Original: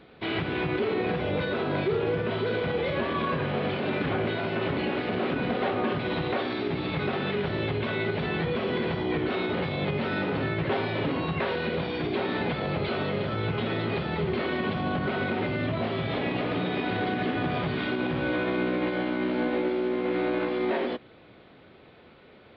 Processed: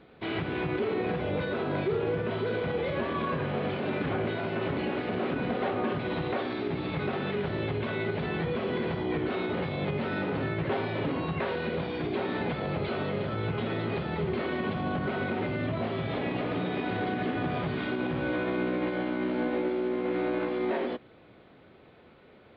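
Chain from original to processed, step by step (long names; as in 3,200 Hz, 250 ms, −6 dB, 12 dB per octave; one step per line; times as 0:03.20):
high-shelf EQ 3,200 Hz −7 dB
level −2 dB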